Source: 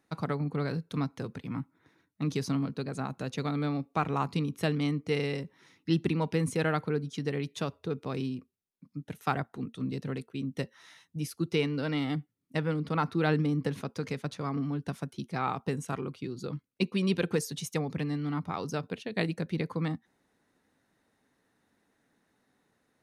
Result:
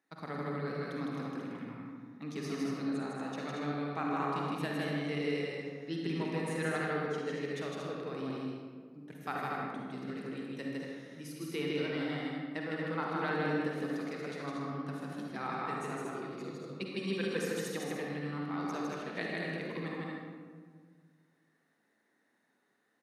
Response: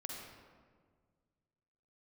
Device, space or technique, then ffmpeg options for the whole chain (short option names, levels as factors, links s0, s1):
stadium PA: -filter_complex "[0:a]highpass=220,equalizer=f=1800:t=o:w=0.44:g=6,aecho=1:1:157.4|233.2:0.794|0.501[s0];[1:a]atrim=start_sample=2205[s1];[s0][s1]afir=irnorm=-1:irlink=0,volume=0.562"